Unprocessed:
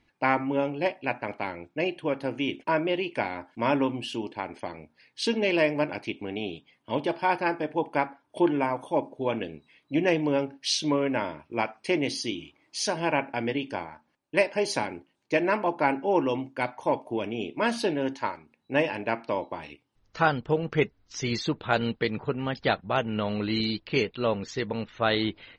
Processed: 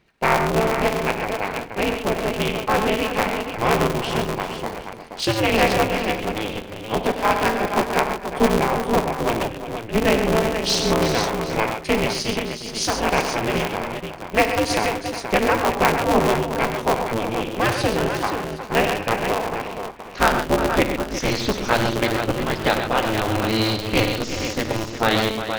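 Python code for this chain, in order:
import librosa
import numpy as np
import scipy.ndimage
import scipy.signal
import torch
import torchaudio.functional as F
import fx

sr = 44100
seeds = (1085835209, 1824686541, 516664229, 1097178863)

y = fx.spec_repair(x, sr, seeds[0], start_s=24.26, length_s=0.21, low_hz=210.0, high_hz=9800.0, source='after')
y = fx.echo_multitap(y, sr, ms=(54, 97, 131, 358, 476, 764), db=(-13.0, -11.0, -9.0, -11.0, -7.5, -18.0))
y = y * np.sign(np.sin(2.0 * np.pi * 110.0 * np.arange(len(y)) / sr))
y = y * librosa.db_to_amplitude(5.0)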